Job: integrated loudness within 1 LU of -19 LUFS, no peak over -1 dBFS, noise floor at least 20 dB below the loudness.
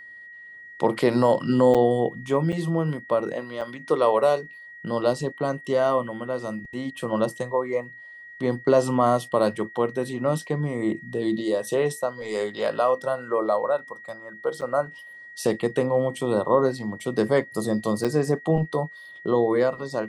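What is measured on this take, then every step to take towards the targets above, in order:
dropouts 5; longest dropout 6.7 ms; steady tone 1.9 kHz; tone level -41 dBFS; loudness -24.5 LUFS; peak level -7.5 dBFS; loudness target -19.0 LUFS
-> interpolate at 1.74/2.52/3.61/14.61/18.04 s, 6.7 ms; band-stop 1.9 kHz, Q 30; trim +5.5 dB

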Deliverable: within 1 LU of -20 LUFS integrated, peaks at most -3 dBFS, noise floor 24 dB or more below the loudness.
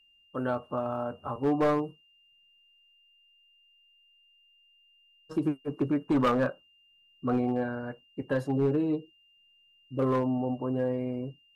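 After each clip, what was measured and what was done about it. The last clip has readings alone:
clipped samples 0.9%; clipping level -20.0 dBFS; steady tone 2.8 kHz; tone level -61 dBFS; loudness -30.0 LUFS; peak level -20.0 dBFS; loudness target -20.0 LUFS
-> clip repair -20 dBFS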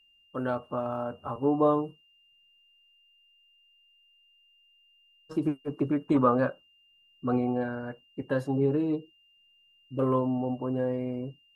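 clipped samples 0.0%; steady tone 2.8 kHz; tone level -61 dBFS
-> band-stop 2.8 kHz, Q 30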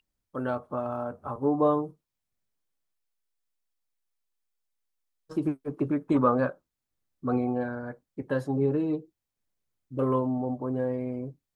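steady tone not found; loudness -29.0 LUFS; peak level -11.0 dBFS; loudness target -20.0 LUFS
-> trim +9 dB; peak limiter -3 dBFS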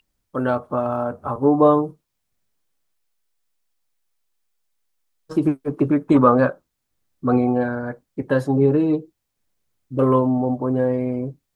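loudness -20.0 LUFS; peak level -3.0 dBFS; noise floor -77 dBFS

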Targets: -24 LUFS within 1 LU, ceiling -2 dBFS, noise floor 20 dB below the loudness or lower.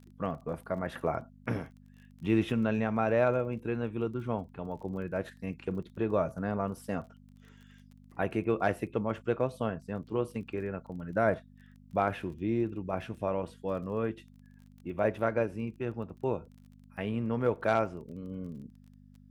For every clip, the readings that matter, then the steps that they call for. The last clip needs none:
tick rate 23 per s; hum 50 Hz; highest harmonic 250 Hz; hum level -54 dBFS; loudness -33.0 LUFS; peak level -13.5 dBFS; loudness target -24.0 LUFS
-> de-click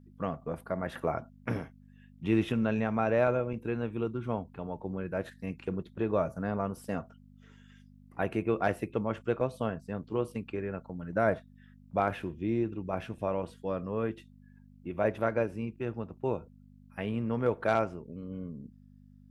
tick rate 0 per s; hum 50 Hz; highest harmonic 250 Hz; hum level -54 dBFS
-> de-hum 50 Hz, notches 5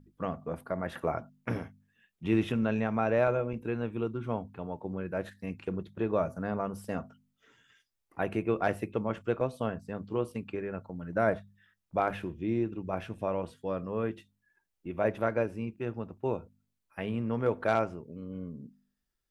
hum not found; loudness -33.0 LUFS; peak level -13.5 dBFS; loudness target -24.0 LUFS
-> trim +9 dB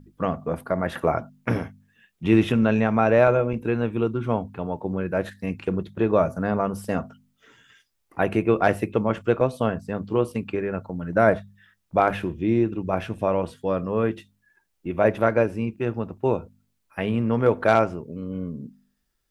loudness -24.0 LUFS; peak level -4.5 dBFS; noise floor -73 dBFS

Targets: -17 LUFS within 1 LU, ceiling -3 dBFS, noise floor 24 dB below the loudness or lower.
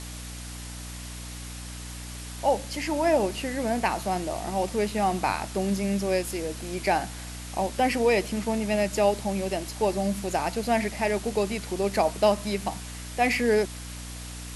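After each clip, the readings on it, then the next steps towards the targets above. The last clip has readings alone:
hum 60 Hz; highest harmonic 300 Hz; hum level -37 dBFS; noise floor -38 dBFS; noise floor target -51 dBFS; loudness -26.5 LUFS; peak level -9.5 dBFS; loudness target -17.0 LUFS
-> de-hum 60 Hz, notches 5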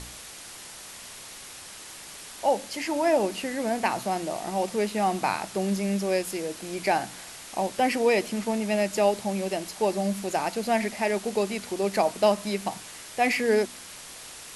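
hum not found; noise floor -43 dBFS; noise floor target -51 dBFS
-> noise reduction 8 dB, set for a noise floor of -43 dBFS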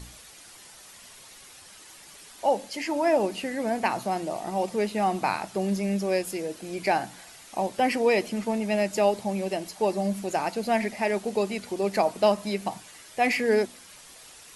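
noise floor -49 dBFS; noise floor target -51 dBFS
-> noise reduction 6 dB, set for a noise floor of -49 dBFS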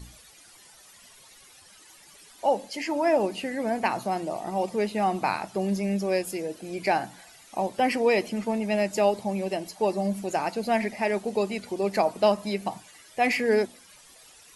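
noise floor -53 dBFS; loudness -27.0 LUFS; peak level -9.5 dBFS; loudness target -17.0 LUFS
-> trim +10 dB; peak limiter -3 dBFS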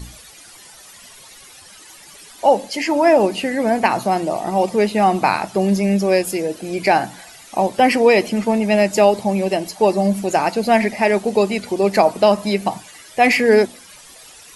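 loudness -17.0 LUFS; peak level -3.0 dBFS; noise floor -43 dBFS

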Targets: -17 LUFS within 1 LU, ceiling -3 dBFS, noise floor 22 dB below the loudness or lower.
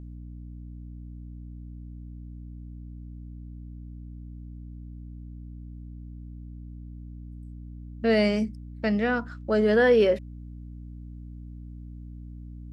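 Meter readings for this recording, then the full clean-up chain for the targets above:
hum 60 Hz; highest harmonic 300 Hz; hum level -38 dBFS; loudness -24.0 LUFS; peak level -10.5 dBFS; loudness target -17.0 LUFS
-> hum notches 60/120/180/240/300 Hz; trim +7 dB

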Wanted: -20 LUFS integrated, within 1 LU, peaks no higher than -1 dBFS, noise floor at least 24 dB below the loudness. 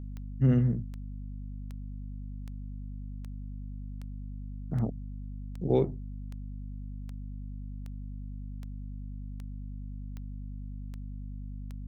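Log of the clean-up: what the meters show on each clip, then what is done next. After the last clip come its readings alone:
clicks found 16; hum 50 Hz; highest harmonic 250 Hz; hum level -37 dBFS; loudness -36.0 LUFS; peak level -13.5 dBFS; loudness target -20.0 LUFS
-> de-click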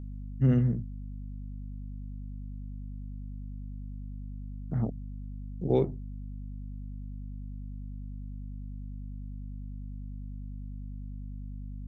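clicks found 0; hum 50 Hz; highest harmonic 250 Hz; hum level -37 dBFS
-> hum notches 50/100/150/200/250 Hz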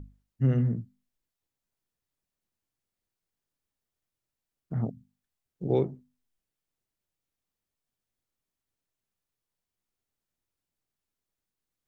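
hum not found; loudness -29.5 LUFS; peak level -15.0 dBFS; loudness target -20.0 LUFS
-> trim +9.5 dB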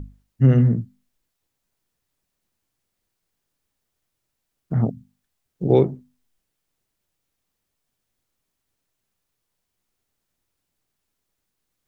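loudness -20.0 LUFS; peak level -5.5 dBFS; noise floor -79 dBFS

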